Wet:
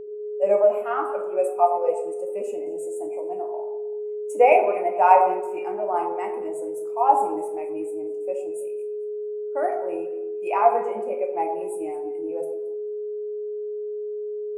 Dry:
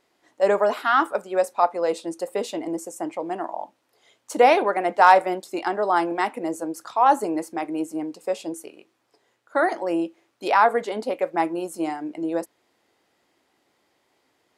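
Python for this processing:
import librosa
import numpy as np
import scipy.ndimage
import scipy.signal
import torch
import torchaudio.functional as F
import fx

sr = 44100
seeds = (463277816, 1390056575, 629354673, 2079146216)

y = fx.curve_eq(x, sr, hz=(150.0, 360.0, 620.0, 1800.0, 2500.0, 3700.0, 8500.0), db=(0, -7, -1, -9, 6, -16, 8))
y = y + 10.0 ** (-29.0 / 20.0) * np.sin(2.0 * np.pi * 420.0 * np.arange(len(y)) / sr)
y = fx.echo_alternate(y, sr, ms=111, hz=1100.0, feedback_pct=62, wet_db=-9)
y = fx.rev_plate(y, sr, seeds[0], rt60_s=1.0, hf_ratio=0.55, predelay_ms=0, drr_db=1.0)
y = fx.spectral_expand(y, sr, expansion=1.5)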